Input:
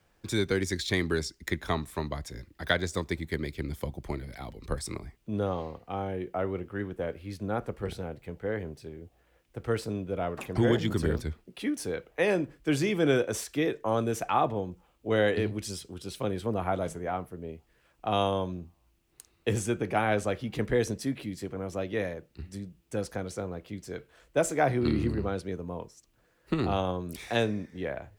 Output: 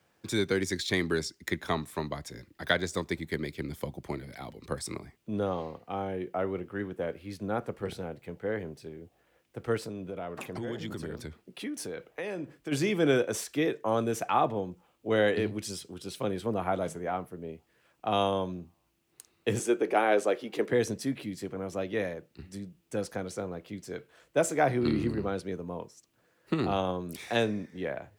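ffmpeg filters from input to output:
-filter_complex "[0:a]asplit=3[s0][s1][s2];[s0]afade=t=out:st=9.77:d=0.02[s3];[s1]acompressor=threshold=0.0224:ratio=4:attack=3.2:release=140:knee=1:detection=peak,afade=t=in:st=9.77:d=0.02,afade=t=out:st=12.71:d=0.02[s4];[s2]afade=t=in:st=12.71:d=0.02[s5];[s3][s4][s5]amix=inputs=3:normalize=0,asettb=1/sr,asplit=3[s6][s7][s8];[s6]atrim=end=19.594[s9];[s7]atrim=start=19.59:end=20.72,asetpts=PTS-STARTPTS,afade=t=in:d=0.004:c=qsin,afade=t=out:st=1.126:d=0.004:c=qsin,highpass=f=370:t=q:w=1.8[s10];[s8]atrim=start=20.716[s11];[s9][s10]acrossfade=d=0.004:c1=hsin:c2=qsin[s12];[s12][s11]acrossfade=d=0.004:c1=qsin:c2=hsin,highpass=120"

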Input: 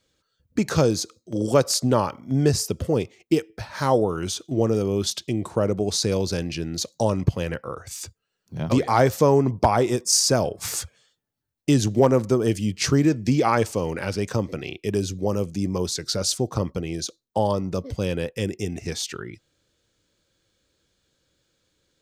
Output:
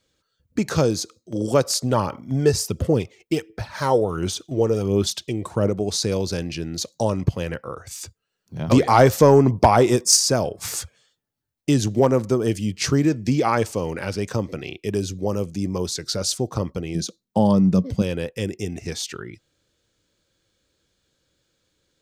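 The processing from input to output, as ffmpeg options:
-filter_complex "[0:a]asplit=3[s0][s1][s2];[s0]afade=t=out:st=1.81:d=0.02[s3];[s1]aphaser=in_gain=1:out_gain=1:delay=2.3:decay=0.42:speed=1.4:type=sinusoidal,afade=t=in:st=1.81:d=0.02,afade=t=out:st=5.68:d=0.02[s4];[s2]afade=t=in:st=5.68:d=0.02[s5];[s3][s4][s5]amix=inputs=3:normalize=0,asplit=3[s6][s7][s8];[s6]afade=t=out:st=8.67:d=0.02[s9];[s7]acontrast=30,afade=t=in:st=8.67:d=0.02,afade=t=out:st=10.15:d=0.02[s10];[s8]afade=t=in:st=10.15:d=0.02[s11];[s9][s10][s11]amix=inputs=3:normalize=0,asettb=1/sr,asplit=3[s12][s13][s14];[s12]atrim=end=16.954[s15];[s13]atrim=start=16.95:end=18.02,asetpts=PTS-STARTPTS,afade=t=in:d=0.004:c=qsin,afade=t=out:st=1.066:d=0.004:c=qsin,equalizer=f=190:w=1.8:g=14.5[s16];[s14]atrim=start=18.016[s17];[s15][s16]acrossfade=d=0.004:c1=hsin:c2=qsin[s18];[s18][s17]acrossfade=d=0.004:c1=qsin:c2=hsin"

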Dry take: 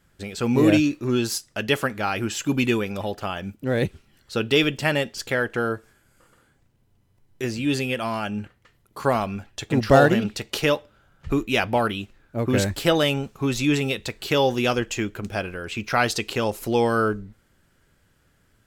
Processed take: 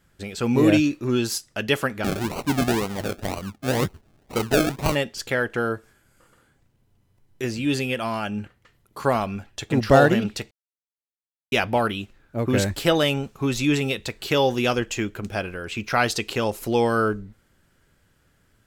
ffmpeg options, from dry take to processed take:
-filter_complex "[0:a]asplit=3[s0][s1][s2];[s0]afade=t=out:st=2.03:d=0.02[s3];[s1]acrusher=samples=36:mix=1:aa=0.000001:lfo=1:lforange=21.6:lforate=2,afade=t=in:st=2.03:d=0.02,afade=t=out:st=4.94:d=0.02[s4];[s2]afade=t=in:st=4.94:d=0.02[s5];[s3][s4][s5]amix=inputs=3:normalize=0,asplit=3[s6][s7][s8];[s6]atrim=end=10.51,asetpts=PTS-STARTPTS,afade=t=out:st=10.506:d=0.004:c=hsin[s9];[s7]atrim=start=10.51:end=11.52,asetpts=PTS-STARTPTS,volume=0[s10];[s8]atrim=start=11.52,asetpts=PTS-STARTPTS,afade=t=in:d=0.004:c=hsin[s11];[s9][s10][s11]concat=n=3:v=0:a=1"

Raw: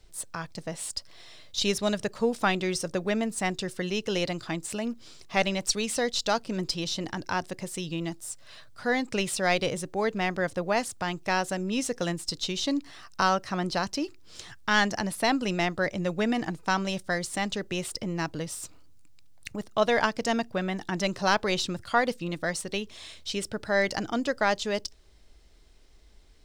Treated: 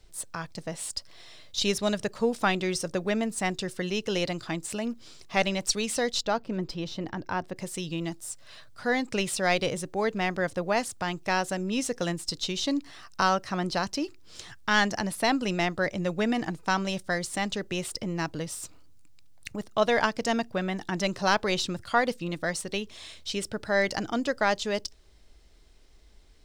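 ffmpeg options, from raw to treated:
-filter_complex "[0:a]asettb=1/sr,asplit=3[s0][s1][s2];[s0]atrim=end=6.224[s3];[s1]atrim=start=6.22:end=7.56,asetpts=PTS-STARTPTS,afade=t=in:d=0.004:c=qsin,afade=t=out:st=1.336:d=0.004:c=qsin,equalizer=f=9300:w=0.36:g=-15[s4];[s2]atrim=start=7.556[s5];[s3][s4]acrossfade=d=0.004:c1=hsin:c2=qsin[s6];[s6][s5]acrossfade=d=0.004:c1=qsin:c2=hsin"

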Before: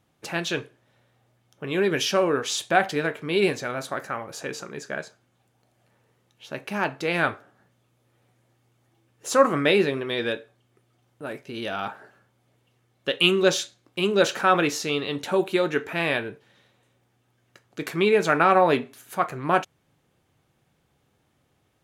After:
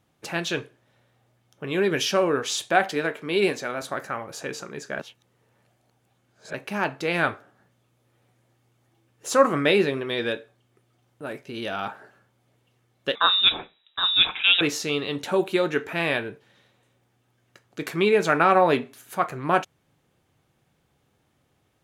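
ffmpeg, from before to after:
-filter_complex "[0:a]asettb=1/sr,asplit=3[s0][s1][s2];[s0]atrim=end=2.684[s3];[s1]atrim=start=2.68:end=3.82,asetpts=PTS-STARTPTS,afade=t=in:d=0.004:c=qsin,afade=t=out:st=1.136:d=0.004:c=qsin,highpass=180[s4];[s2]atrim=start=3.816[s5];[s3][s4]acrossfade=d=0.004:c1=hsin:c2=qsin[s6];[s6][s5]acrossfade=d=0.004:c1=qsin:c2=hsin,asettb=1/sr,asplit=3[s7][s8][s9];[s7]atrim=end=13.154[s10];[s8]atrim=start=13.15:end=14.61,asetpts=PTS-STARTPTS,afade=t=in:d=0.004:c=qsin,afade=t=out:st=1.456:d=0.004:c=qsin,lowpass=f=3400:t=q:w=0.5098,lowpass=f=3400:t=q:w=0.6013,lowpass=f=3400:t=q:w=0.9,lowpass=f=3400:t=q:w=2.563,afreqshift=-4000[s11];[s9]atrim=start=14.606[s12];[s10][s11]acrossfade=d=0.004:c1=hsin:c2=qsin[s13];[s13][s12]acrossfade=d=0.004:c1=qsin:c2=hsin,asplit=3[s14][s15][s16];[s14]atrim=end=4.992[s17];[s15]atrim=start=4.988:end=6.542,asetpts=PTS-STARTPTS,areverse[s18];[s16]atrim=start=6.538[s19];[s17][s18]acrossfade=d=0.004:c1=hsin:c2=hsin[s20];[s20][s19]acrossfade=d=0.004:c1=hsin:c2=hsin"

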